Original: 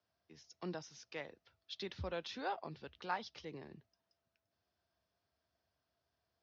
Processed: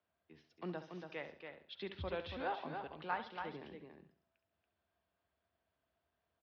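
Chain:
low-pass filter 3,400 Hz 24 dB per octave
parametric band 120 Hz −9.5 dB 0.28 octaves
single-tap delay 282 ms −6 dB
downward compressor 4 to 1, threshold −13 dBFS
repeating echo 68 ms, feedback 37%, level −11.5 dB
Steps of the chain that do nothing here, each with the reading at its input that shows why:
downward compressor, threshold −13 dBFS: peak of its input −24.5 dBFS

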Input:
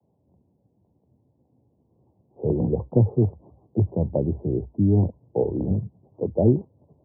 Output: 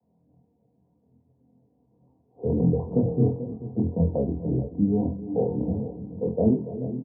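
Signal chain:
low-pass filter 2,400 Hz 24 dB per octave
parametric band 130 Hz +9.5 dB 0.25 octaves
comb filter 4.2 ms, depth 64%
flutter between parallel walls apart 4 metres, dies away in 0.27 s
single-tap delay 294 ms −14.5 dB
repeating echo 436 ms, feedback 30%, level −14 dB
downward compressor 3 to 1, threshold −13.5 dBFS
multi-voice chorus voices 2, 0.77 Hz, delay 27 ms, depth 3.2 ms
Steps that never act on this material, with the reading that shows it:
low-pass filter 2,400 Hz: nothing at its input above 720 Hz

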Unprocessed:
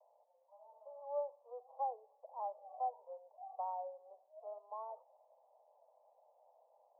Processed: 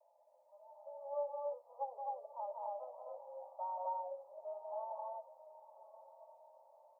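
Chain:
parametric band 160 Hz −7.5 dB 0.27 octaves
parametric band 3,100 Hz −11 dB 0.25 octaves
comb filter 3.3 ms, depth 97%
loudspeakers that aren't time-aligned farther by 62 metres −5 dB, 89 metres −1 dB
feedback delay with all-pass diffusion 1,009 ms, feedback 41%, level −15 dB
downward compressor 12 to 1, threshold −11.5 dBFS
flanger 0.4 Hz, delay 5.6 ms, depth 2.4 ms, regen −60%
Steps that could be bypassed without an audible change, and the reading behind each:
parametric band 160 Hz: nothing at its input below 400 Hz
parametric band 3,100 Hz: nothing at its input above 1,100 Hz
downward compressor, threshold −11.5 dBFS: peak of its input −25.0 dBFS

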